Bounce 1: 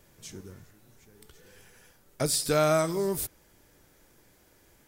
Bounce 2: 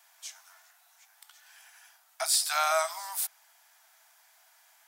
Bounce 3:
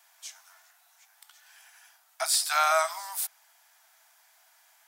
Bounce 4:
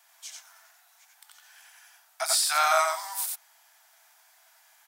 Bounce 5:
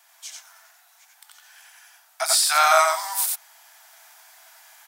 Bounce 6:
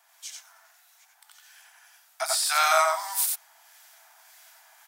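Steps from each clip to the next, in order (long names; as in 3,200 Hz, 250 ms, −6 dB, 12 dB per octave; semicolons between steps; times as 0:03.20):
Chebyshev high-pass filter 650 Hz, order 10; level +3 dB
dynamic equaliser 1,400 Hz, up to +4 dB, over −37 dBFS, Q 0.74
single-tap delay 89 ms −3 dB
speech leveller within 3 dB 2 s; level +6.5 dB
two-band tremolo in antiphase 1.7 Hz, depth 50%, crossover 1,600 Hz; level −1.5 dB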